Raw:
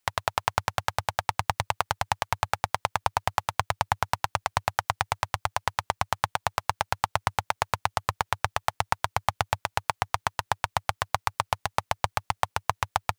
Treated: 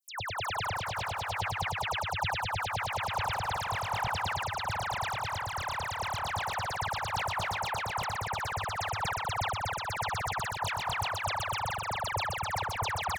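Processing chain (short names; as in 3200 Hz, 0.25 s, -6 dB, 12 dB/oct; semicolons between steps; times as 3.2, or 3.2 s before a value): regenerating reverse delay 0.361 s, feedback 48%, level -6 dB; dispersion lows, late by 0.128 s, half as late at 2100 Hz; speakerphone echo 0.17 s, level -10 dB; sustainer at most 24 dB/s; gain -7.5 dB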